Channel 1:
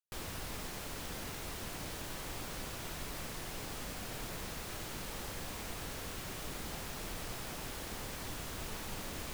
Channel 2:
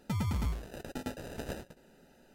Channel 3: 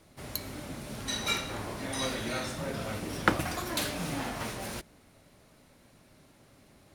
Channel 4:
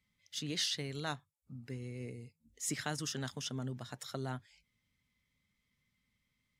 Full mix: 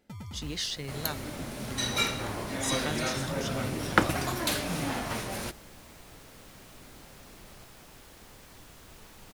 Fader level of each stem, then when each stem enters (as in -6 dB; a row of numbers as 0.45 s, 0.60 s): -9.0 dB, -10.0 dB, +2.5 dB, +1.5 dB; 0.30 s, 0.00 s, 0.70 s, 0.00 s